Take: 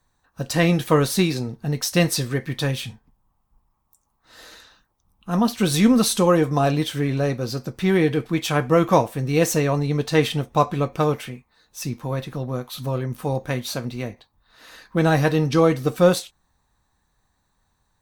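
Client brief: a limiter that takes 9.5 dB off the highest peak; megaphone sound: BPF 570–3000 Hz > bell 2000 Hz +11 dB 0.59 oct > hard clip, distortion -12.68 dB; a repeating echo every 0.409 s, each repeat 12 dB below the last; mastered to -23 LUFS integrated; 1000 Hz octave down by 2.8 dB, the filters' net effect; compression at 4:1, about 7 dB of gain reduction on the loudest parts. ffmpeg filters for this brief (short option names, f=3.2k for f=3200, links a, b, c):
-af "equalizer=f=1k:t=o:g=-4,acompressor=threshold=-20dB:ratio=4,alimiter=limit=-19.5dB:level=0:latency=1,highpass=570,lowpass=3k,equalizer=f=2k:t=o:w=0.59:g=11,aecho=1:1:409|818|1227:0.251|0.0628|0.0157,asoftclip=type=hard:threshold=-28dB,volume=12dB"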